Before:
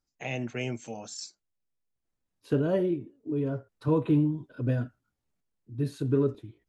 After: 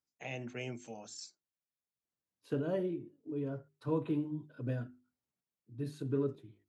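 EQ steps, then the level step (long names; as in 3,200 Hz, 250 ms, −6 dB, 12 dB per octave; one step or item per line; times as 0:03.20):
high-pass filter 100 Hz
mains-hum notches 50/100/150/200/250/300/350/400 Hz
−7.5 dB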